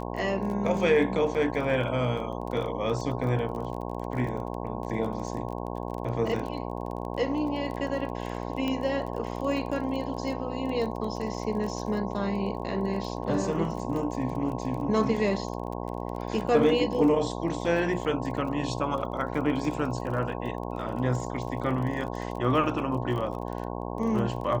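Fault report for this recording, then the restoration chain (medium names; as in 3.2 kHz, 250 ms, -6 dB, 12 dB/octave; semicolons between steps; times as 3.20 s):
buzz 60 Hz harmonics 18 -34 dBFS
crackle 24 per s -34 dBFS
8.68 s: pop -18 dBFS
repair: de-click; de-hum 60 Hz, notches 18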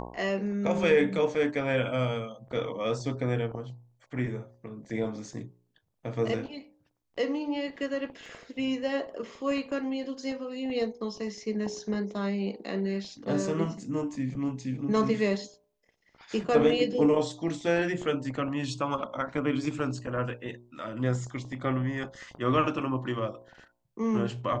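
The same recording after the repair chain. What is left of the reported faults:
nothing left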